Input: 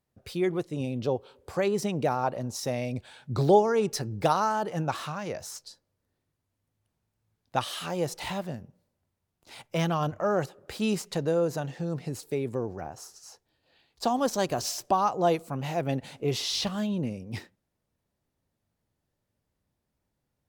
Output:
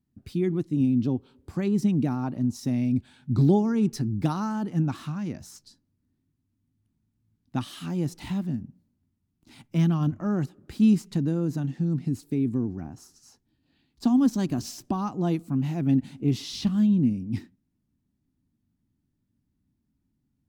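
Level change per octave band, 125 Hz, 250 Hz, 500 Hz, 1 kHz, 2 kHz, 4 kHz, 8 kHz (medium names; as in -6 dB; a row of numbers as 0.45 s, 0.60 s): +7.0 dB, +9.0 dB, -7.0 dB, -9.0 dB, -7.0 dB, -6.5 dB, -6.5 dB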